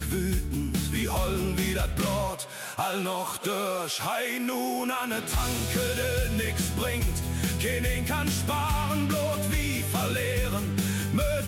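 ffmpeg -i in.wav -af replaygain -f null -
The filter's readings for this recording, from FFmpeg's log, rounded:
track_gain = +11.7 dB
track_peak = 0.130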